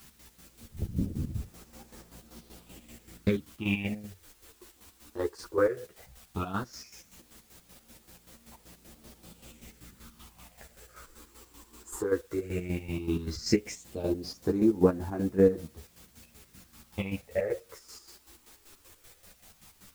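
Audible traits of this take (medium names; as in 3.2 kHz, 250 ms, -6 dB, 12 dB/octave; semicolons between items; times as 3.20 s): phasing stages 6, 0.15 Hz, lowest notch 160–3200 Hz; a quantiser's noise floor 10-bit, dither triangular; chopped level 5.2 Hz, depth 65%, duty 45%; a shimmering, thickened sound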